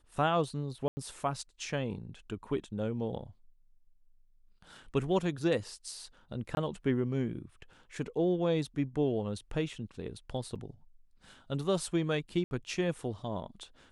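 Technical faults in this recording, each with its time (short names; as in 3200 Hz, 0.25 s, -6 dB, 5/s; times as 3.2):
0.88–0.97 gap 90 ms
6.55–6.57 gap 21 ms
10.55–10.56 gap 6.3 ms
12.44–12.51 gap 71 ms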